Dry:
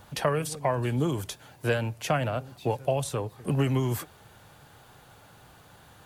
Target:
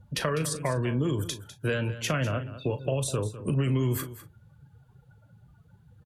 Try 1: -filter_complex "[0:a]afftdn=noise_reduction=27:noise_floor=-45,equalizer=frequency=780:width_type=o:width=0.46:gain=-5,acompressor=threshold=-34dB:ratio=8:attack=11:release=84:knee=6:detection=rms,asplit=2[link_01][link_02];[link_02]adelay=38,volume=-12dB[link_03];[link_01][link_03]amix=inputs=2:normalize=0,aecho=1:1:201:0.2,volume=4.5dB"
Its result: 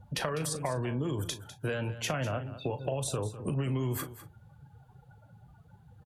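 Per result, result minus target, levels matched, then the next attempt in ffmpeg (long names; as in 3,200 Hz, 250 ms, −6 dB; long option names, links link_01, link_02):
downward compressor: peak gain reduction +6 dB; 1,000 Hz band +2.5 dB
-filter_complex "[0:a]afftdn=noise_reduction=27:noise_floor=-45,equalizer=frequency=780:width_type=o:width=0.46:gain=-5,acompressor=threshold=-27.5dB:ratio=8:attack=11:release=84:knee=6:detection=rms,asplit=2[link_01][link_02];[link_02]adelay=38,volume=-12dB[link_03];[link_01][link_03]amix=inputs=2:normalize=0,aecho=1:1:201:0.2,volume=4.5dB"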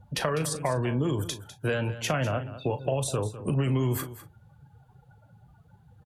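1,000 Hz band +3.0 dB
-filter_complex "[0:a]afftdn=noise_reduction=27:noise_floor=-45,equalizer=frequency=780:width_type=o:width=0.46:gain=-16,acompressor=threshold=-27.5dB:ratio=8:attack=11:release=84:knee=6:detection=rms,asplit=2[link_01][link_02];[link_02]adelay=38,volume=-12dB[link_03];[link_01][link_03]amix=inputs=2:normalize=0,aecho=1:1:201:0.2,volume=4.5dB"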